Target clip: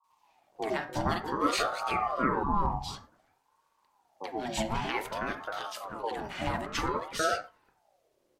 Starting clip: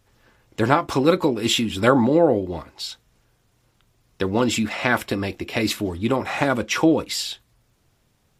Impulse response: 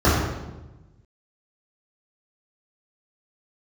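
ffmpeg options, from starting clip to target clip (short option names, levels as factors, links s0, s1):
-filter_complex "[0:a]asettb=1/sr,asplit=3[s0][s1][s2];[s0]atrim=end=5.164[s3];[s1]atrim=start=5.16:end=5.96,asetpts=PTS-STARTPTS,afade=t=in:d=0.004:c=qsin,afade=t=out:st=0.796:d=0.004:c=qsin,acompressor=threshold=0.0447:ratio=2.5[s4];[s2]atrim=start=5.956[s5];[s3][s4]acrossfade=d=0.004:c1=hsin:c2=qsin[s6];[s6][s5]acrossfade=d=0.004:c1=qsin:c2=hsin,acrossover=split=270|1100[s7][s8][s9];[s9]adelay=40[s10];[s8]adelay=360[s11];[s7][s11][s10]amix=inputs=3:normalize=0,asplit=2[s12][s13];[1:a]atrim=start_sample=2205,afade=t=out:st=0.16:d=0.01,atrim=end_sample=7497[s14];[s13][s14]afir=irnorm=-1:irlink=0,volume=0.0335[s15];[s12][s15]amix=inputs=2:normalize=0,aeval=exprs='val(0)*sin(2*PI*730*n/s+730*0.4/0.54*sin(2*PI*0.54*n/s))':c=same,volume=0.398"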